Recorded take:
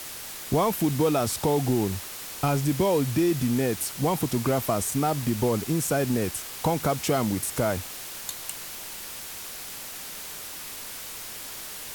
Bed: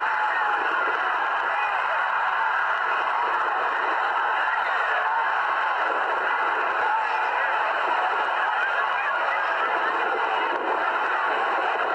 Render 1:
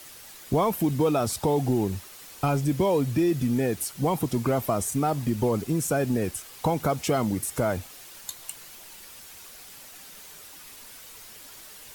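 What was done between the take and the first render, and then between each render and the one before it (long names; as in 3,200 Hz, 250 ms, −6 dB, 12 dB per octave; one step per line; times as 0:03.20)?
broadband denoise 9 dB, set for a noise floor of −38 dBFS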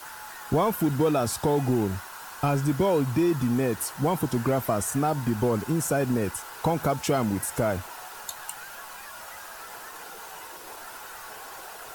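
mix in bed −19.5 dB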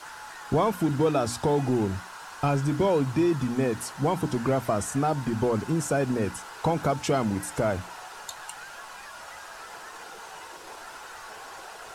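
low-pass filter 7,900 Hz 12 dB per octave
mains-hum notches 60/120/180/240/300 Hz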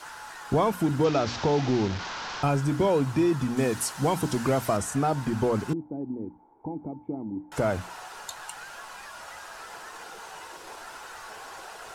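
0:01.04–0:02.43: linear delta modulator 32 kbit/s, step −29 dBFS
0:03.57–0:04.77: high-shelf EQ 3,200 Hz +7.5 dB
0:05.73–0:07.52: formant resonators in series u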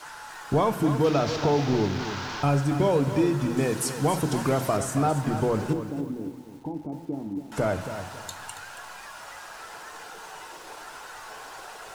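rectangular room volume 680 cubic metres, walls mixed, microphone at 0.42 metres
feedback echo at a low word length 277 ms, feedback 35%, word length 8 bits, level −10 dB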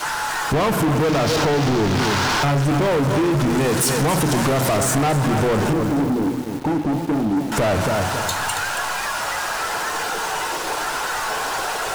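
downward compressor, threshold −24 dBFS, peak gain reduction 7 dB
leveller curve on the samples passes 5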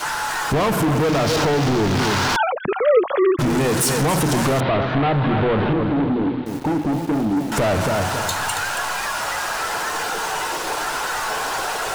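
0:02.36–0:03.39: three sine waves on the formant tracks
0:04.60–0:06.46: Butterworth low-pass 3,900 Hz 48 dB per octave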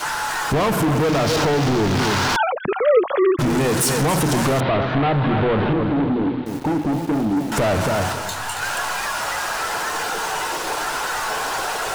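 0:08.12–0:08.61: micro pitch shift up and down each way 35 cents → 50 cents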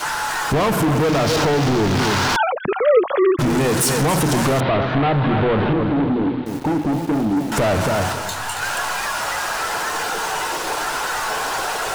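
level +1 dB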